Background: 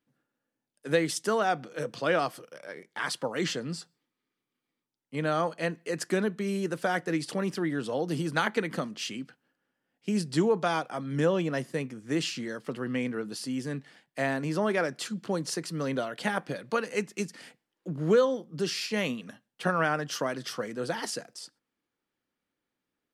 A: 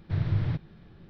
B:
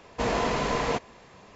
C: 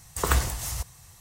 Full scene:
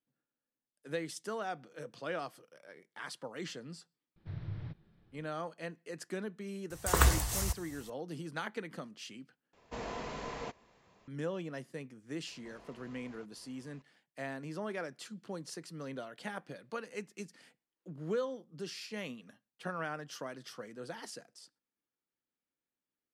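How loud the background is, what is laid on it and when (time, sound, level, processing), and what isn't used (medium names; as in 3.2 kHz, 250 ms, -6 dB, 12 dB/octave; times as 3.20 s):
background -12 dB
4.16 s: add A -14.5 dB
6.70 s: add C -2 dB
9.53 s: replace with B -14.5 dB
12.27 s: add B -13 dB + compression 3:1, threshold -48 dBFS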